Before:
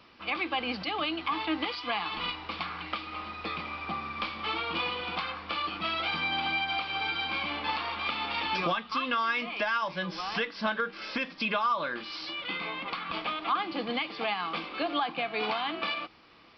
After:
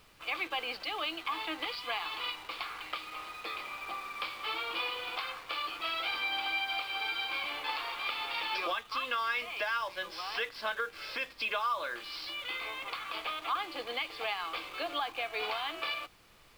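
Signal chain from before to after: HPF 400 Hz 24 dB/oct; bell 800 Hz -3.5 dB 1.8 oct; in parallel at -9 dB: bit-crush 7-bit; on the sum: added noise pink -59 dBFS; gain -4.5 dB

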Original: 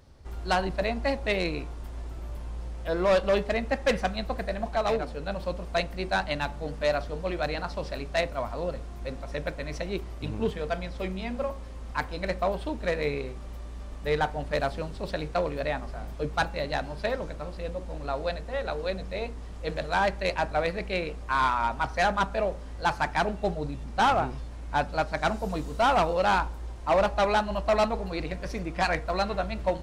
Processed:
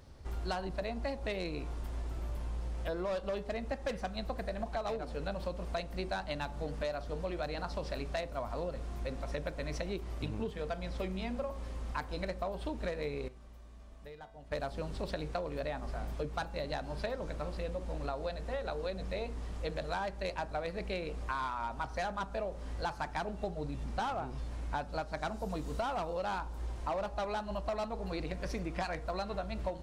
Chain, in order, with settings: dynamic EQ 2100 Hz, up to -4 dB, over -41 dBFS, Q 1.2; compressor 10:1, threshold -33 dBFS, peak gain reduction 13.5 dB; 13.28–14.52 resonator 220 Hz, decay 0.57 s, harmonics odd, mix 80%

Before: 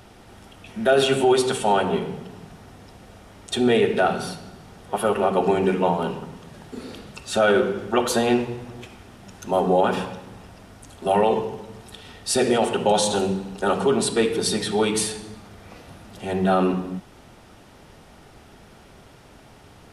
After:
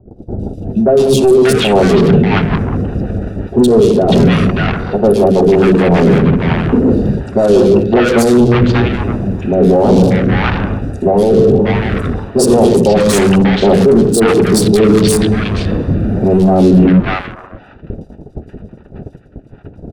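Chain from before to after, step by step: Wiener smoothing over 41 samples; gate -47 dBFS, range -26 dB; reverse; compressor 5:1, threshold -31 dBFS, peak gain reduction 15.5 dB; reverse; soft clip -35.5 dBFS, distortion -8 dB; rotary speaker horn 5.5 Hz, later 1.1 Hz, at 7.86; three bands offset in time lows, highs, mids 0.11/0.59 s, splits 910/3800 Hz; maximiser +34.5 dB; gain -1 dB

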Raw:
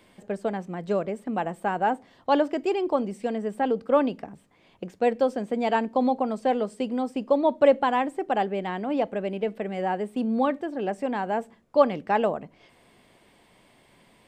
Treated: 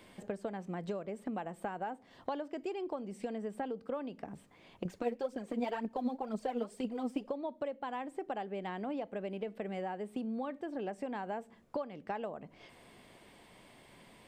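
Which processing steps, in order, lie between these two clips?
compressor 16:1, threshold -35 dBFS, peak gain reduction 23.5 dB; 4.85–7.29 phaser 2 Hz, delay 4.7 ms, feedback 63%

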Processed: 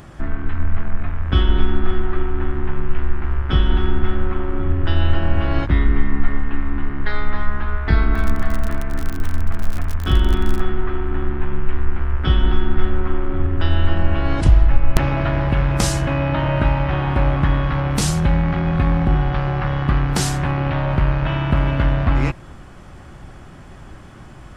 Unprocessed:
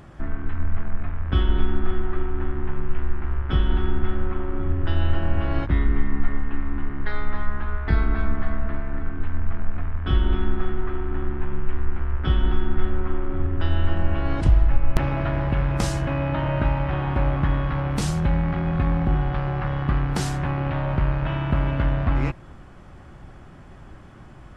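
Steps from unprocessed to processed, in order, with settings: high shelf 3700 Hz +7.5 dB; 8.13–10.59 crackle 57/s -24 dBFS; gain +4.5 dB

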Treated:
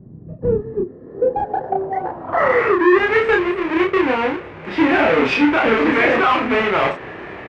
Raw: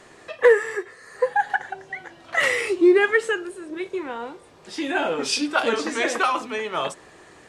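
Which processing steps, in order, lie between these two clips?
half-waves squared off; HPF 46 Hz; high shelf 2500 Hz -9 dB; in parallel at -0.5 dB: compressor, threshold -28 dBFS, peak gain reduction 18 dB; on the sum: low-pass sweep 160 Hz -> 2300 Hz, 0.33–3.14; limiter -12.5 dBFS, peak gain reduction 11.5 dB; doubler 31 ms -2 dB; gain +3.5 dB

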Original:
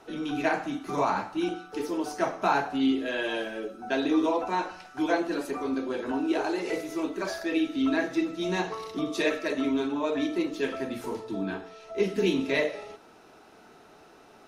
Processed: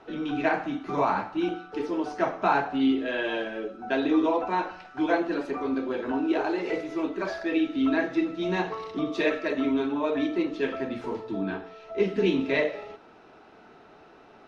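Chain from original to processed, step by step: LPF 3400 Hz 12 dB/oct; gain +1.5 dB

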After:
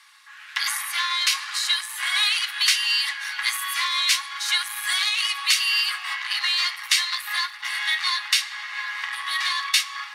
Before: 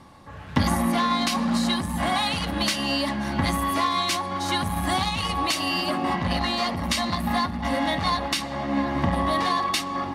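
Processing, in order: inverse Chebyshev high-pass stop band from 580 Hz, stop band 50 dB; on a send: reverb RT60 0.45 s, pre-delay 3 ms, DRR 9 dB; on the sum: gain +6.5 dB

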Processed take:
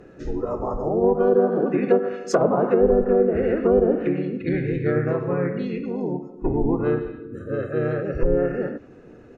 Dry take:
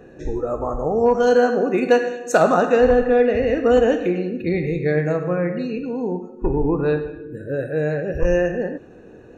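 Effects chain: harmoniser -4 st -2 dB; treble ducked by the level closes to 750 Hz, closed at -9.5 dBFS; gain -4 dB

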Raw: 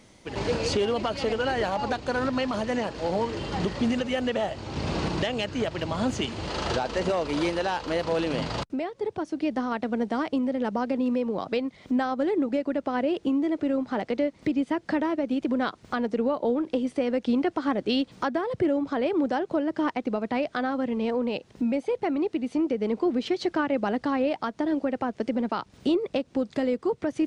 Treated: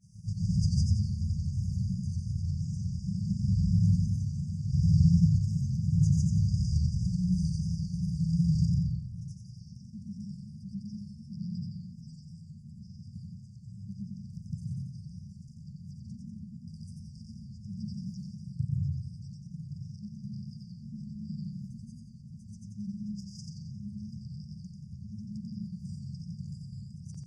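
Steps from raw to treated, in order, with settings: HPF 86 Hz; tilt shelf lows +7 dB; notches 60/120/180 Hz; grains, pitch spread up and down by 0 st; brick-wall FIR band-stop 190–4700 Hz; pre-echo 0.124 s -16 dB; on a send at -2 dB: reverb RT60 0.95 s, pre-delay 0.127 s; on the sum: warbling echo 89 ms, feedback 45%, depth 86 cents, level -4.5 dB; gain +2 dB

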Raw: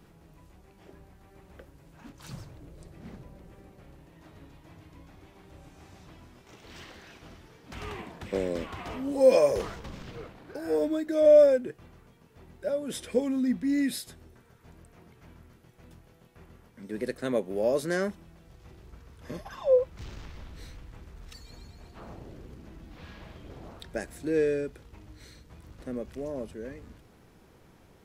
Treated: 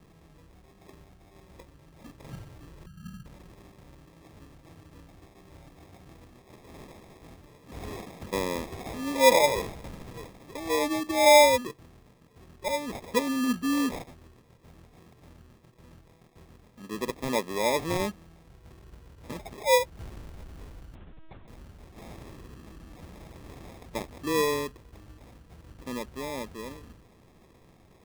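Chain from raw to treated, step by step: 2.86–3.26 EQ curve 130 Hz 0 dB, 180 Hz +8 dB, 350 Hz -20 dB; sample-and-hold 30×; 20.95–21.48 LPC vocoder at 8 kHz pitch kept

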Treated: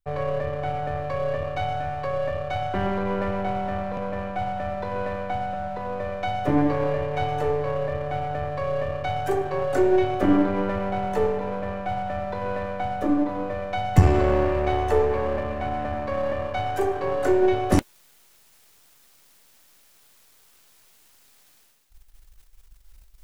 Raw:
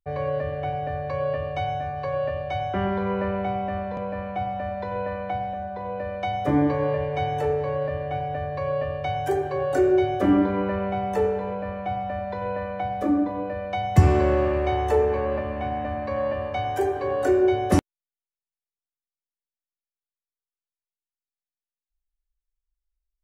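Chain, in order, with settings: half-wave gain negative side -7 dB; reverse; upward compressor, threshold -27 dBFS; reverse; gain +2.5 dB

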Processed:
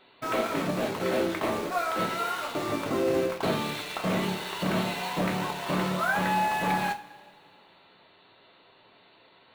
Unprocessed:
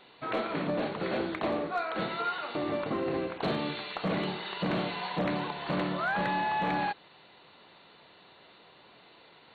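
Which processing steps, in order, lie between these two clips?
in parallel at -2.5 dB: requantised 6-bit, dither none; on the sum: two-slope reverb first 0.26 s, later 1.9 s, from -20 dB, DRR 3 dB; gain -3 dB

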